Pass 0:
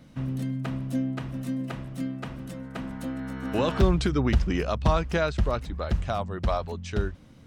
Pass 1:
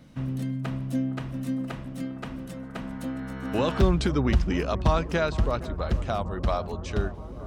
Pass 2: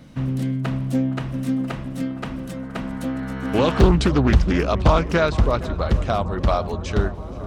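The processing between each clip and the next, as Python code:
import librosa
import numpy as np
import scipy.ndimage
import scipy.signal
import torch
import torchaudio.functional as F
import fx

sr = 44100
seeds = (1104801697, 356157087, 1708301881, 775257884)

y1 = fx.echo_bbd(x, sr, ms=463, stages=4096, feedback_pct=82, wet_db=-16.0)
y2 = fx.echo_swing(y1, sr, ms=789, ratio=1.5, feedback_pct=36, wet_db=-23.5)
y2 = fx.doppler_dist(y2, sr, depth_ms=0.61)
y2 = y2 * 10.0 ** (6.5 / 20.0)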